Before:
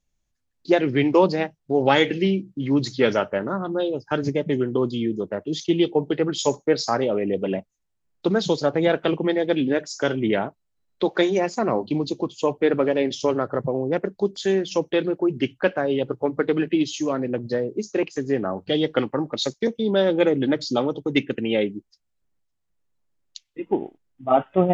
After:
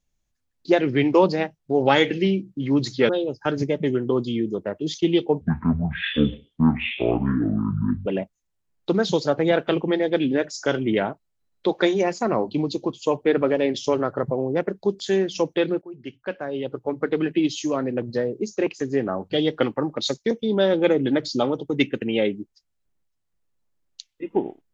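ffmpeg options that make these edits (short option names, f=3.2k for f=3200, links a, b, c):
-filter_complex "[0:a]asplit=5[a][b][c][d][e];[a]atrim=end=3.092[f];[b]atrim=start=3.748:end=6.074[g];[c]atrim=start=6.07:end=7.42,asetpts=PTS-STARTPTS,asetrate=22491,aresample=44100,atrim=end_sample=116735,asetpts=PTS-STARTPTS[h];[d]atrim=start=7.416:end=15.18,asetpts=PTS-STARTPTS,afade=t=out:st=7.76:d=0.004:c=hsin:silence=0.0944061[i];[e]atrim=start=15.18,asetpts=PTS-STARTPTS,afade=t=in:d=1.61:silence=0.0944061[j];[f][g]acrossfade=d=0.004:c1=hsin:c2=hsin[k];[k][h]acrossfade=d=0.004:c1=hsin:c2=hsin[l];[i][j]concat=n=2:v=0:a=1[m];[l][m]acrossfade=d=0.004:c1=hsin:c2=hsin"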